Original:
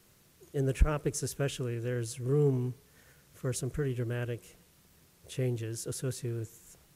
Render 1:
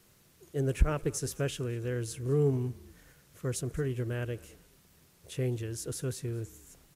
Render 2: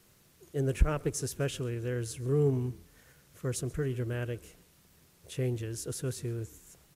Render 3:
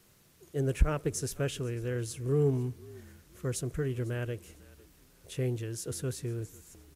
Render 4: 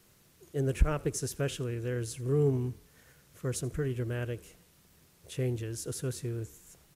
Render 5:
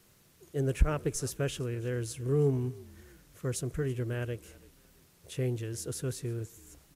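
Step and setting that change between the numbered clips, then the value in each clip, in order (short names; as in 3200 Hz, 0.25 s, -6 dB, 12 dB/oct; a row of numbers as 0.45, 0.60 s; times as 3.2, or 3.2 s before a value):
frequency-shifting echo, time: 210, 133, 499, 81, 331 ms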